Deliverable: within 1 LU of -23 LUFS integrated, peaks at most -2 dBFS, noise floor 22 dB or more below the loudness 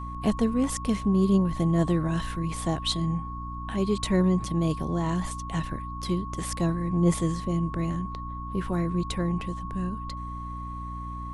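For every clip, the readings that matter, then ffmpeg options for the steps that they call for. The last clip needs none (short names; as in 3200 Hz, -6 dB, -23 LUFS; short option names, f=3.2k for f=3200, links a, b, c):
hum 60 Hz; harmonics up to 300 Hz; hum level -35 dBFS; steady tone 1100 Hz; tone level -37 dBFS; loudness -28.0 LUFS; peak -10.5 dBFS; loudness target -23.0 LUFS
-> -af "bandreject=f=60:t=h:w=6,bandreject=f=120:t=h:w=6,bandreject=f=180:t=h:w=6,bandreject=f=240:t=h:w=6,bandreject=f=300:t=h:w=6"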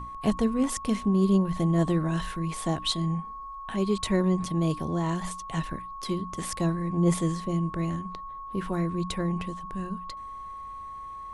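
hum none; steady tone 1100 Hz; tone level -37 dBFS
-> -af "bandreject=f=1.1k:w=30"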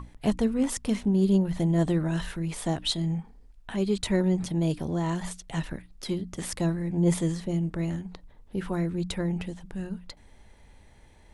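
steady tone none; loudness -28.5 LUFS; peak -12.5 dBFS; loudness target -23.0 LUFS
-> -af "volume=5.5dB"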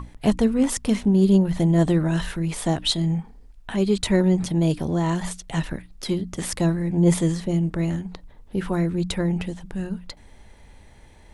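loudness -23.0 LUFS; peak -7.0 dBFS; noise floor -49 dBFS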